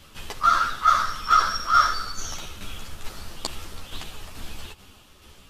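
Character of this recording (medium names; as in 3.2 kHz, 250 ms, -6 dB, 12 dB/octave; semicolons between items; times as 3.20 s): tremolo saw down 2.3 Hz, depth 45%; a shimmering, thickened sound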